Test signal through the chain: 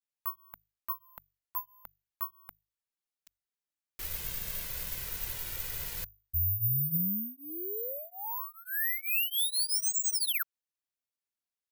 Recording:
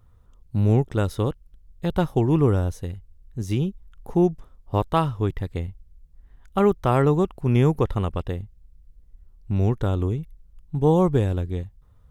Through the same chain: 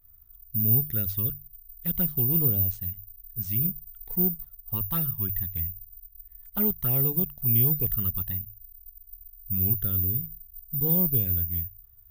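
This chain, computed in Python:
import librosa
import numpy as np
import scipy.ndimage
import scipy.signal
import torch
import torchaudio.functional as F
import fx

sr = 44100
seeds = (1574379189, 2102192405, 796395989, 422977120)

p1 = fx.band_shelf(x, sr, hz=590.0, db=-8.5, octaves=2.5)
p2 = fx.hum_notches(p1, sr, base_hz=50, count=3)
p3 = fx.env_flanger(p2, sr, rest_ms=3.3, full_db=-18.5)
p4 = fx.vibrato(p3, sr, rate_hz=0.5, depth_cents=72.0)
p5 = 10.0 ** (-23.0 / 20.0) * np.tanh(p4 / 10.0 ** (-23.0 / 20.0))
p6 = p4 + F.gain(torch.from_numpy(p5), -4.0).numpy()
p7 = (np.kron(p6[::3], np.eye(3)[0]) * 3)[:len(p6)]
y = F.gain(torch.from_numpy(p7), -8.5).numpy()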